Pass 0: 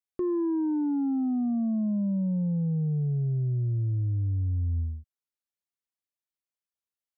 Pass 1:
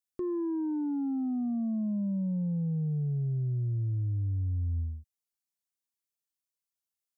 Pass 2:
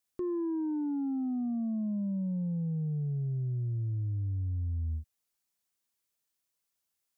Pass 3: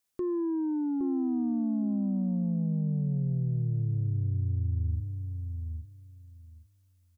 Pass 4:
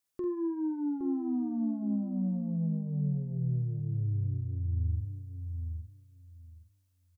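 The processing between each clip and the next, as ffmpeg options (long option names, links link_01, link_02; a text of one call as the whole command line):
ffmpeg -i in.wav -af "bass=frequency=250:gain=2,treble=frequency=4000:gain=9,volume=-5dB" out.wav
ffmpeg -i in.wav -af "alimiter=level_in=12.5dB:limit=-24dB:level=0:latency=1,volume=-12.5dB,volume=7dB" out.wav
ffmpeg -i in.wav -filter_complex "[0:a]asplit=2[link_01][link_02];[link_02]adelay=815,lowpass=frequency=850:poles=1,volume=-5.5dB,asplit=2[link_03][link_04];[link_04]adelay=815,lowpass=frequency=850:poles=1,volume=0.18,asplit=2[link_05][link_06];[link_06]adelay=815,lowpass=frequency=850:poles=1,volume=0.18[link_07];[link_01][link_03][link_05][link_07]amix=inputs=4:normalize=0,volume=2.5dB" out.wav
ffmpeg -i in.wav -filter_complex "[0:a]asplit=2[link_01][link_02];[link_02]adelay=48,volume=-7dB[link_03];[link_01][link_03]amix=inputs=2:normalize=0,volume=-3.5dB" out.wav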